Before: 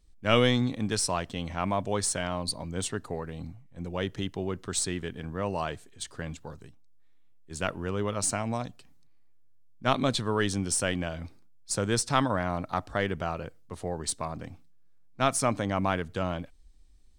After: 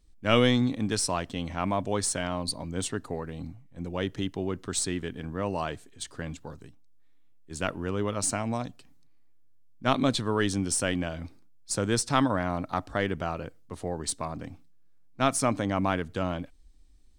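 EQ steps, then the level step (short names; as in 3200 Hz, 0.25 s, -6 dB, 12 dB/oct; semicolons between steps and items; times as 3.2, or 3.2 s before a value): bell 280 Hz +4.5 dB 0.46 oct; 0.0 dB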